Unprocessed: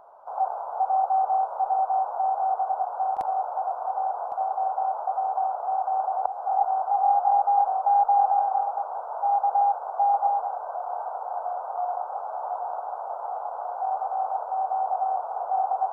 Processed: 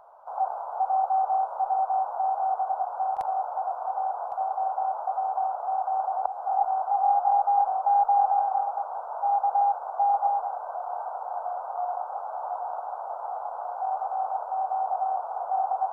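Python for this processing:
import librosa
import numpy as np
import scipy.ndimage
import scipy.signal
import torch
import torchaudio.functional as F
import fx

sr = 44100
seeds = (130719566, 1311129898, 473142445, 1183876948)

y = fx.peak_eq(x, sr, hz=270.0, db=-12.5, octaves=1.1)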